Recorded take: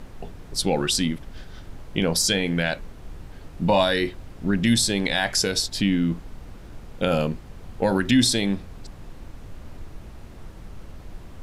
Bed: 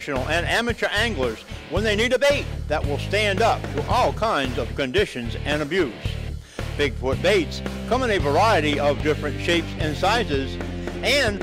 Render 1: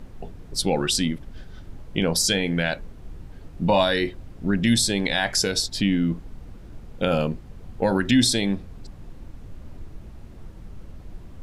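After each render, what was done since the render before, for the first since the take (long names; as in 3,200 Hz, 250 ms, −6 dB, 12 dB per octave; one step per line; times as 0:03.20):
broadband denoise 6 dB, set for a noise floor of −43 dBFS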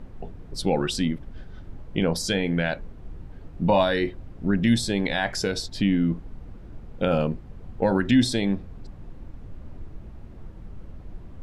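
high-shelf EQ 3,600 Hz −12 dB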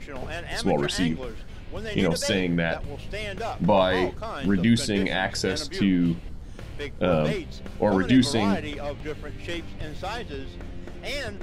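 mix in bed −12.5 dB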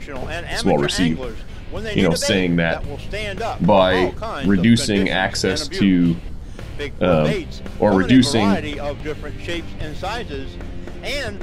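level +6.5 dB
brickwall limiter −3 dBFS, peak gain reduction 1.5 dB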